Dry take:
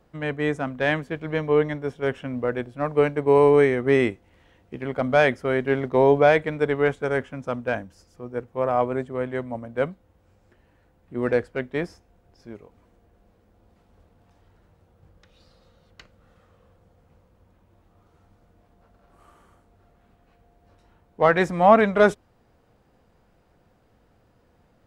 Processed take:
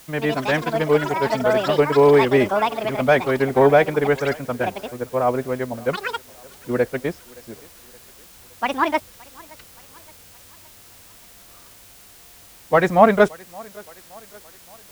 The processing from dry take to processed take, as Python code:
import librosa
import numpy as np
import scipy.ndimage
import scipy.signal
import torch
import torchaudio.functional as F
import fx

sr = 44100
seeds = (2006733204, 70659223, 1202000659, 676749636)

p1 = fx.echo_pitch(x, sr, ms=219, semitones=7, count=3, db_per_echo=-6.0)
p2 = fx.quant_dither(p1, sr, seeds[0], bits=6, dither='triangular')
p3 = p1 + F.gain(torch.from_numpy(p2), -10.5).numpy()
p4 = fx.stretch_vocoder(p3, sr, factor=0.6)
p5 = fx.echo_thinned(p4, sr, ms=570, feedback_pct=54, hz=190.0, wet_db=-24.0)
y = F.gain(torch.from_numpy(p5), 1.0).numpy()